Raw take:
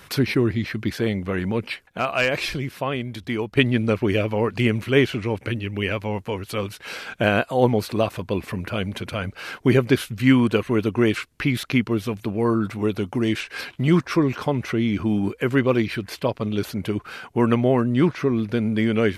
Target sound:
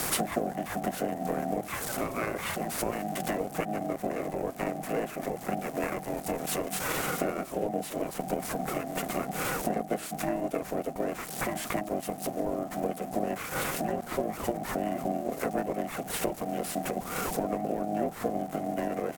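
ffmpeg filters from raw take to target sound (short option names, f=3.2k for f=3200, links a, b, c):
-filter_complex "[0:a]aeval=exprs='val(0)+0.5*0.0447*sgn(val(0))':c=same,highpass=77,bandreject=f=50:t=h:w=6,bandreject=f=100:t=h:w=6,bandreject=f=150:t=h:w=6,bandreject=f=200:t=h:w=6,bandreject=f=250:t=h:w=6,asplit=2[a][b];[b]acrusher=bits=2:mix=0:aa=0.5,volume=-9dB[c];[a][c]amix=inputs=2:normalize=0,equalizer=f=5.4k:w=1.3:g=-11.5,acompressor=threshold=-28dB:ratio=8,asplit=3[d][e][f];[e]asetrate=22050,aresample=44100,atempo=2,volume=-3dB[g];[f]asetrate=37084,aresample=44100,atempo=1.18921,volume=-8dB[h];[d][g][h]amix=inputs=3:normalize=0,afreqshift=-430,asetrate=37084,aresample=44100,atempo=1.18921,aeval=exprs='val(0)*sin(2*PI*470*n/s)':c=same,aemphasis=mode=production:type=cd,volume=1dB"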